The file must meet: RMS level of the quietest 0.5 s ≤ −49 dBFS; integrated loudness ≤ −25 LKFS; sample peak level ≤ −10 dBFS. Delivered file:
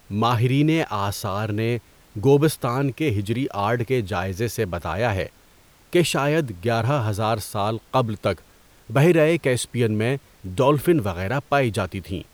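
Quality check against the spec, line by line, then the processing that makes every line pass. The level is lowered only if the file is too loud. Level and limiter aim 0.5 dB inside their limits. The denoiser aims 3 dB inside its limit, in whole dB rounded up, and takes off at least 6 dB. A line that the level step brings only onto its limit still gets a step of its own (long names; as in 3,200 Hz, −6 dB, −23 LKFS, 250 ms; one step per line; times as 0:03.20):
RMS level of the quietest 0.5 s −54 dBFS: in spec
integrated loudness −22.5 LKFS: out of spec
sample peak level −5.5 dBFS: out of spec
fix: level −3 dB
brickwall limiter −10.5 dBFS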